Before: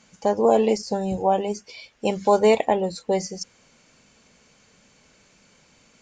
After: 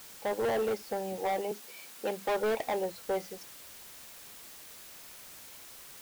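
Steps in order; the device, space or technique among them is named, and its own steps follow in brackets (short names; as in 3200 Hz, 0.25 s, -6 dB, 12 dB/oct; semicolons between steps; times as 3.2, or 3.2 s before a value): aircraft radio (BPF 330–2600 Hz; hard clip -20.5 dBFS, distortion -7 dB; white noise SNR 14 dB); 1.51–2.29 steep high-pass 160 Hz; gain -6 dB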